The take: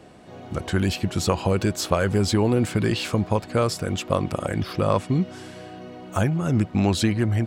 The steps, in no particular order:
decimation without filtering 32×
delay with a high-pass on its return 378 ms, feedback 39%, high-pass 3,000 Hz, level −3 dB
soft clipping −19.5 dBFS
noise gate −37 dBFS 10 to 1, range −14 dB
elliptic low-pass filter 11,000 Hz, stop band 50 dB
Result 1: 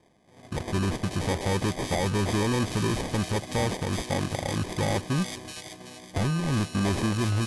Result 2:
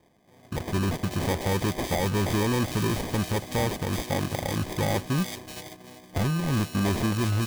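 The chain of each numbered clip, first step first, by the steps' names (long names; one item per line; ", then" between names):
decimation without filtering, then noise gate, then delay with a high-pass on its return, then soft clipping, then elliptic low-pass filter
elliptic low-pass filter, then decimation without filtering, then delay with a high-pass on its return, then soft clipping, then noise gate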